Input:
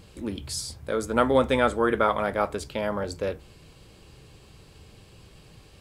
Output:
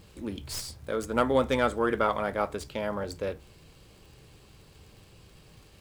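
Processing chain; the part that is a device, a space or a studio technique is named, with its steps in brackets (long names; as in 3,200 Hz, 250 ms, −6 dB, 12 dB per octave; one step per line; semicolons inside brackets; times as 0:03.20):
record under a worn stylus (stylus tracing distortion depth 0.038 ms; surface crackle 95 per second −44 dBFS; pink noise bed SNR 36 dB)
level −3.5 dB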